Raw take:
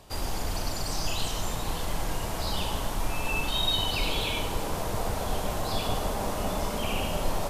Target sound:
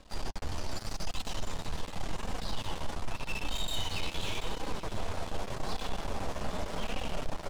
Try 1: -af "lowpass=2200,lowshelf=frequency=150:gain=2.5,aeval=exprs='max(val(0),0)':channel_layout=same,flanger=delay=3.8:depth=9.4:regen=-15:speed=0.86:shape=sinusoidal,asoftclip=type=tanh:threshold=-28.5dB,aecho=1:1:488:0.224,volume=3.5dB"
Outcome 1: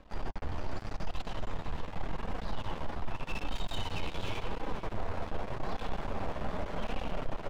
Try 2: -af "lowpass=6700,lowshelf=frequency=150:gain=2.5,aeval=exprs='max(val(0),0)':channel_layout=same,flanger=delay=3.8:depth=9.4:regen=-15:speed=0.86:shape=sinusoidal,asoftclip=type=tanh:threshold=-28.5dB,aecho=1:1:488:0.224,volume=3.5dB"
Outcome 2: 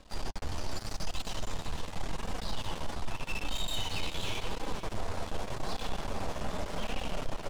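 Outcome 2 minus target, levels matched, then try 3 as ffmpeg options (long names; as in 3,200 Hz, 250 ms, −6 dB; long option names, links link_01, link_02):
echo 246 ms early
-af "lowpass=6700,lowshelf=frequency=150:gain=2.5,aeval=exprs='max(val(0),0)':channel_layout=same,flanger=delay=3.8:depth=9.4:regen=-15:speed=0.86:shape=sinusoidal,asoftclip=type=tanh:threshold=-28.5dB,aecho=1:1:734:0.224,volume=3.5dB"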